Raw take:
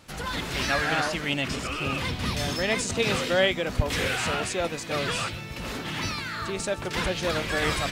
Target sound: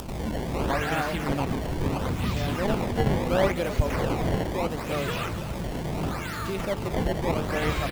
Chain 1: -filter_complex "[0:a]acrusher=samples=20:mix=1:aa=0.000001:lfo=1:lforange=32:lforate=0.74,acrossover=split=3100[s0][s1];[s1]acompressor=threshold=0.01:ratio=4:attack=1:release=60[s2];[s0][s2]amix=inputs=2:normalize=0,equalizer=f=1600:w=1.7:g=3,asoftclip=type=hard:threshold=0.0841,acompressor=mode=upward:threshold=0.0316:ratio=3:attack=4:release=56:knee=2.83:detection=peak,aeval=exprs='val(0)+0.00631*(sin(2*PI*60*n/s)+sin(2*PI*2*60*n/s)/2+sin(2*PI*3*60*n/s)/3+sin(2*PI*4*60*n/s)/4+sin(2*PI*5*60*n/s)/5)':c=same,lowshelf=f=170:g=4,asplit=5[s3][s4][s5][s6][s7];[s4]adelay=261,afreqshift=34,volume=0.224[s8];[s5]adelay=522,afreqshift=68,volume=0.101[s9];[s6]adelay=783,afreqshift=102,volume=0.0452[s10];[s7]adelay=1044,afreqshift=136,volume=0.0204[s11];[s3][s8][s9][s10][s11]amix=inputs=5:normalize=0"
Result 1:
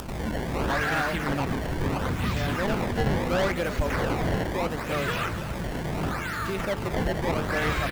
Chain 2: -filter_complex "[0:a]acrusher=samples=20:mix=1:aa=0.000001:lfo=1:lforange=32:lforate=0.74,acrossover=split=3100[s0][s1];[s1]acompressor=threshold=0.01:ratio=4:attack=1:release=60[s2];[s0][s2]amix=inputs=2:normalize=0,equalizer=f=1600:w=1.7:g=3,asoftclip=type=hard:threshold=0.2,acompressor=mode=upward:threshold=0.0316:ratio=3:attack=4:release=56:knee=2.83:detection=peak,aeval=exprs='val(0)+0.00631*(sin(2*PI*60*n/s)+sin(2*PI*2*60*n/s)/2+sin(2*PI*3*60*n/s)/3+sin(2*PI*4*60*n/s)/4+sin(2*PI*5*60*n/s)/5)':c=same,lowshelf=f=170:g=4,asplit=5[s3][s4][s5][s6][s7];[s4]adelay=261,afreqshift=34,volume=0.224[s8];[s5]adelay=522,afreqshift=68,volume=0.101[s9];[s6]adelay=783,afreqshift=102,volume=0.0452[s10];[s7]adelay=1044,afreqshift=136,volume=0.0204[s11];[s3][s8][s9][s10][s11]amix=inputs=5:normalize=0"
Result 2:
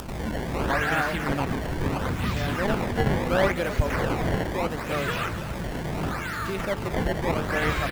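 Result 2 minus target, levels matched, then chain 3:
2 kHz band +4.0 dB
-filter_complex "[0:a]acrusher=samples=20:mix=1:aa=0.000001:lfo=1:lforange=32:lforate=0.74,acrossover=split=3100[s0][s1];[s1]acompressor=threshold=0.01:ratio=4:attack=1:release=60[s2];[s0][s2]amix=inputs=2:normalize=0,equalizer=f=1600:w=1.7:g=-3.5,asoftclip=type=hard:threshold=0.2,acompressor=mode=upward:threshold=0.0316:ratio=3:attack=4:release=56:knee=2.83:detection=peak,aeval=exprs='val(0)+0.00631*(sin(2*PI*60*n/s)+sin(2*PI*2*60*n/s)/2+sin(2*PI*3*60*n/s)/3+sin(2*PI*4*60*n/s)/4+sin(2*PI*5*60*n/s)/5)':c=same,lowshelf=f=170:g=4,asplit=5[s3][s4][s5][s6][s7];[s4]adelay=261,afreqshift=34,volume=0.224[s8];[s5]adelay=522,afreqshift=68,volume=0.101[s9];[s6]adelay=783,afreqshift=102,volume=0.0452[s10];[s7]adelay=1044,afreqshift=136,volume=0.0204[s11];[s3][s8][s9][s10][s11]amix=inputs=5:normalize=0"

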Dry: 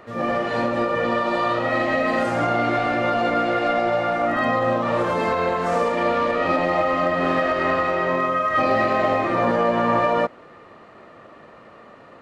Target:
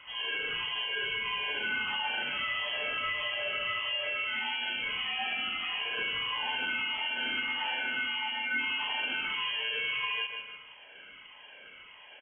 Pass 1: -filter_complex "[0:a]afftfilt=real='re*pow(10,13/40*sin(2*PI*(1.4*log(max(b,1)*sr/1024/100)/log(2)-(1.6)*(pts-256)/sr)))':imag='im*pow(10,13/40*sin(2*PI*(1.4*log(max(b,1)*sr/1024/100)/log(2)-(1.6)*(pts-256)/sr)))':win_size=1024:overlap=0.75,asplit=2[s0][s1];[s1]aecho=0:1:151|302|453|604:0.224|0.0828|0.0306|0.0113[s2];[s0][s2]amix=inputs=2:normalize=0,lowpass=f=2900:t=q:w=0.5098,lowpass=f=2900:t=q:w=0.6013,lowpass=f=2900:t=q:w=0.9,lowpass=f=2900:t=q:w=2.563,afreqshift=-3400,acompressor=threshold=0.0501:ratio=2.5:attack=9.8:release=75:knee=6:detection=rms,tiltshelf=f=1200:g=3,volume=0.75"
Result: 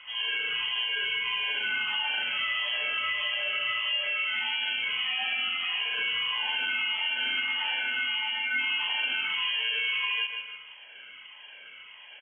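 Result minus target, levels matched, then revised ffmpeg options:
1 kHz band -5.0 dB
-filter_complex "[0:a]afftfilt=real='re*pow(10,13/40*sin(2*PI*(1.4*log(max(b,1)*sr/1024/100)/log(2)-(1.6)*(pts-256)/sr)))':imag='im*pow(10,13/40*sin(2*PI*(1.4*log(max(b,1)*sr/1024/100)/log(2)-(1.6)*(pts-256)/sr)))':win_size=1024:overlap=0.75,asplit=2[s0][s1];[s1]aecho=0:1:151|302|453|604:0.224|0.0828|0.0306|0.0113[s2];[s0][s2]amix=inputs=2:normalize=0,lowpass=f=2900:t=q:w=0.5098,lowpass=f=2900:t=q:w=0.6013,lowpass=f=2900:t=q:w=0.9,lowpass=f=2900:t=q:w=2.563,afreqshift=-3400,acompressor=threshold=0.0501:ratio=2.5:attack=9.8:release=75:knee=6:detection=rms,tiltshelf=f=1200:g=10,volume=0.75"

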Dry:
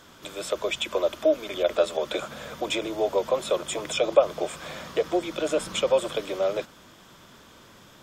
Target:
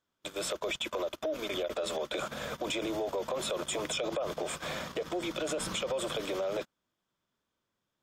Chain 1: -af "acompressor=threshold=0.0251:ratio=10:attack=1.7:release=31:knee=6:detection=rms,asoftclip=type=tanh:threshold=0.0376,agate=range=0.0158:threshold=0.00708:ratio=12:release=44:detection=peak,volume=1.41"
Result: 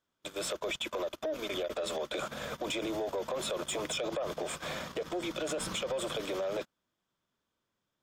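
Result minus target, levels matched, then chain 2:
saturation: distortion +18 dB
-af "acompressor=threshold=0.0251:ratio=10:attack=1.7:release=31:knee=6:detection=rms,asoftclip=type=tanh:threshold=0.119,agate=range=0.0158:threshold=0.00708:ratio=12:release=44:detection=peak,volume=1.41"

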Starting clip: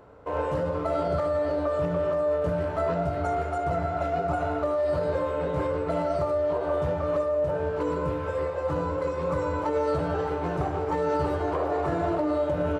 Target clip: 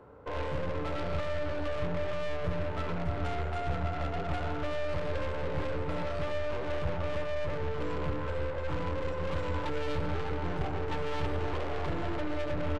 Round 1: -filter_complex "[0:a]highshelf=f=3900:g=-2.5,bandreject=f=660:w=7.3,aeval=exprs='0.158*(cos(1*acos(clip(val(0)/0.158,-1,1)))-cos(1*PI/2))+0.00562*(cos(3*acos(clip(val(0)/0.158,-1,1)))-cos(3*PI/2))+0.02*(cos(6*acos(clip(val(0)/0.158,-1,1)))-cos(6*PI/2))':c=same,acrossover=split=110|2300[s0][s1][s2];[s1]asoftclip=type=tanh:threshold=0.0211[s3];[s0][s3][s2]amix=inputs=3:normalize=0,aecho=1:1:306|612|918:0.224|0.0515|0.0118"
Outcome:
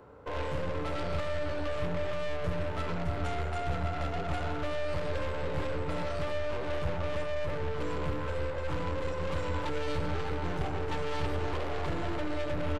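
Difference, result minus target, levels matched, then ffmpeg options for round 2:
8 kHz band +4.0 dB
-filter_complex "[0:a]highshelf=f=3900:g=-12.5,bandreject=f=660:w=7.3,aeval=exprs='0.158*(cos(1*acos(clip(val(0)/0.158,-1,1)))-cos(1*PI/2))+0.00562*(cos(3*acos(clip(val(0)/0.158,-1,1)))-cos(3*PI/2))+0.02*(cos(6*acos(clip(val(0)/0.158,-1,1)))-cos(6*PI/2))':c=same,acrossover=split=110|2300[s0][s1][s2];[s1]asoftclip=type=tanh:threshold=0.0211[s3];[s0][s3][s2]amix=inputs=3:normalize=0,aecho=1:1:306|612|918:0.224|0.0515|0.0118"

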